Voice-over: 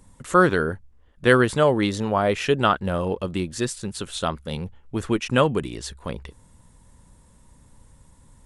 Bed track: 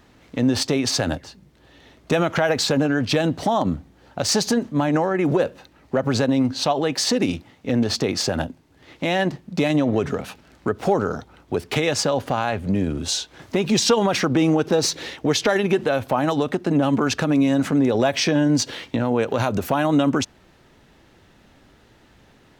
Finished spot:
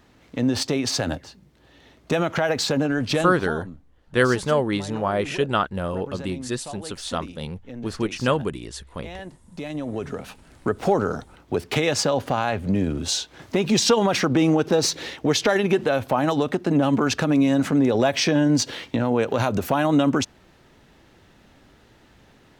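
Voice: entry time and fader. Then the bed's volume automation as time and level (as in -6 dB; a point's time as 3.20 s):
2.90 s, -2.5 dB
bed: 3.21 s -2.5 dB
3.55 s -16.5 dB
9.35 s -16.5 dB
10.57 s -0.5 dB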